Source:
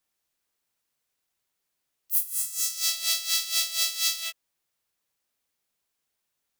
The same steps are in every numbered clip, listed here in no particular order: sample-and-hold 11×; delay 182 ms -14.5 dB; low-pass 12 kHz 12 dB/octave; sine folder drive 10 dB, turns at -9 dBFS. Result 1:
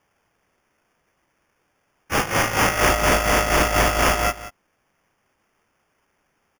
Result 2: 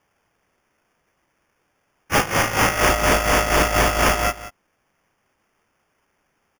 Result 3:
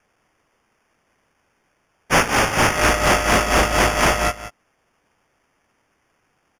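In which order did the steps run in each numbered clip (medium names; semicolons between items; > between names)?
sine folder > low-pass > sample-and-hold > delay; low-pass > sine folder > sample-and-hold > delay; sample-and-hold > delay > sine folder > low-pass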